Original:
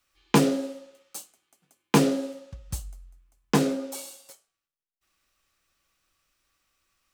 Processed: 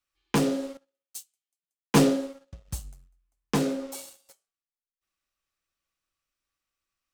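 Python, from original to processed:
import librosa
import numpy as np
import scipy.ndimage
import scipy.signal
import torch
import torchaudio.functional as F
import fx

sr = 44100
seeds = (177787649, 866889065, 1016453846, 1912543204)

y = fx.leveller(x, sr, passes=2)
y = fx.band_widen(y, sr, depth_pct=70, at=(0.77, 2.53))
y = y * 10.0 ** (-9.0 / 20.0)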